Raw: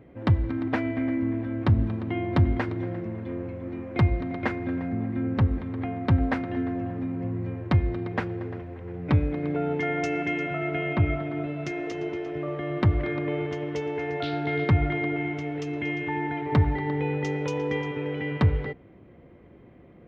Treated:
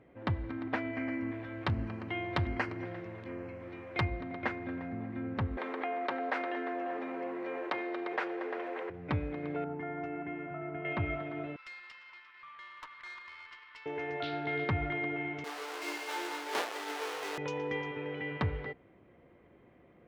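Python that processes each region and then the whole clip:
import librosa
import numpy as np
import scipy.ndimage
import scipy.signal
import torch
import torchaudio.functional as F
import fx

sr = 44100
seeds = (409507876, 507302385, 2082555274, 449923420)

y = fx.chain(x, sr, fx.high_shelf(hz=2100.0, db=9.0),
    fx.filter_lfo_notch(shape='square', hz=1.3, low_hz=240.0, high_hz=3600.0, q=2.8), at=(0.93, 4.05))
y = fx.chain(y, sr, fx.highpass(hz=370.0, slope=24),
    fx.env_flatten(amount_pct=70), at=(5.57, 8.9))
y = fx.chain(y, sr, fx.lowpass(hz=1100.0, slope=12),
    fx.peak_eq(hz=520.0, db=-10.5, octaves=0.49), at=(9.64, 10.85))
y = fx.chain(y, sr, fx.brickwall_bandpass(low_hz=890.0, high_hz=5600.0),
    fx.high_shelf(hz=4000.0, db=-3.0),
    fx.tube_stage(drive_db=36.0, bias=0.65), at=(11.56, 13.86))
y = fx.chain(y, sr, fx.halfwave_hold(),
    fx.highpass(hz=380.0, slope=24),
    fx.detune_double(cents=12), at=(15.44, 17.38))
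y = fx.lowpass(y, sr, hz=3600.0, slope=6)
y = fx.low_shelf(y, sr, hz=430.0, db=-10.5)
y = y * 10.0 ** (-2.5 / 20.0)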